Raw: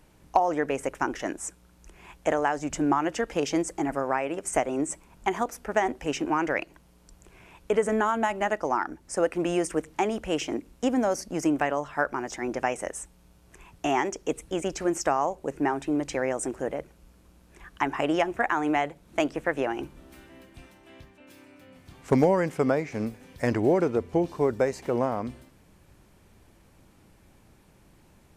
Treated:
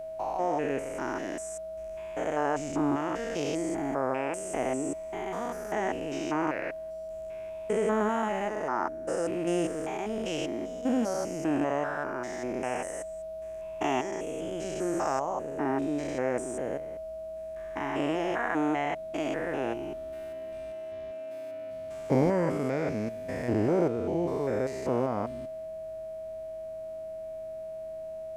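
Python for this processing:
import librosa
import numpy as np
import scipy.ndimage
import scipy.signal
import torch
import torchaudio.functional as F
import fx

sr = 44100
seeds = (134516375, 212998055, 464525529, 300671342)

y = fx.spec_steps(x, sr, hold_ms=200)
y = y + 10.0 ** (-36.0 / 20.0) * np.sin(2.0 * np.pi * 640.0 * np.arange(len(y)) / sr)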